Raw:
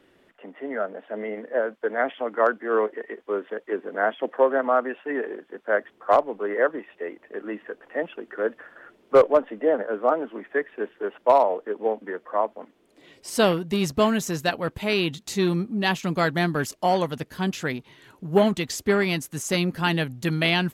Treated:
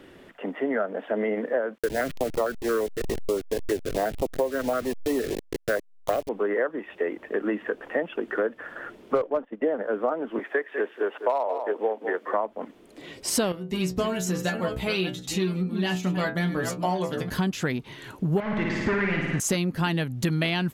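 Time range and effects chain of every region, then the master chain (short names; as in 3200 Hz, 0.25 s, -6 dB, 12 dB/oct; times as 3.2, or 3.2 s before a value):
1.78–6.29 level-crossing sampler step -31.5 dBFS + stepped notch 8.8 Hz 790–1600 Hz
9.18–9.62 gate -34 dBFS, range -14 dB + high shelf 9200 Hz -12 dB
10.39–12.34 HPF 400 Hz + echo 0.197 s -14 dB
13.52–17.3 reverse delay 0.419 s, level -11 dB + metallic resonator 60 Hz, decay 0.32 s, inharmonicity 0.002
18.4–19.4 hard clip -26.5 dBFS + synth low-pass 1900 Hz, resonance Q 2.5 + flutter echo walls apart 9.5 m, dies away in 1 s
whole clip: low shelf 270 Hz +4.5 dB; compressor 8:1, threshold -31 dBFS; gain +8.5 dB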